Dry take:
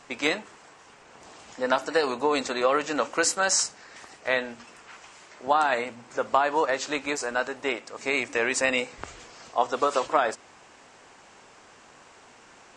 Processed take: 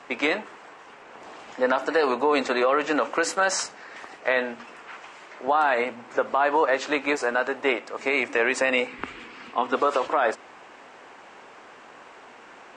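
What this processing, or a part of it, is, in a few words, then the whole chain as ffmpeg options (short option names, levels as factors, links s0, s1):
DJ mixer with the lows and highs turned down: -filter_complex "[0:a]asettb=1/sr,asplit=3[s0][s1][s2];[s0]atrim=end=8.874[s3];[s1]atrim=start=8.87:end=9.75,asetpts=PTS-STARTPTS,afade=t=in:d=0.004:c=qsin,afade=t=out:st=0.876:d=0.004:c=qsin,equalizer=f=250:t=o:w=0.67:g=8,equalizer=f=630:t=o:w=0.67:g=-10,equalizer=f=2500:t=o:w=0.67:g=5,equalizer=f=6300:t=o:w=0.67:g=-7[s4];[s2]atrim=start=9.746[s5];[s3][s4]acrossfade=d=0.004:c1=hsin:c2=qsin[s6];[s6][s5]acrossfade=d=0.004:c1=qsin:c2=hsin,acrossover=split=210 3300:gain=0.251 1 0.224[s7][s8][s9];[s7][s8][s9]amix=inputs=3:normalize=0,alimiter=limit=0.133:level=0:latency=1:release=83,volume=2.11"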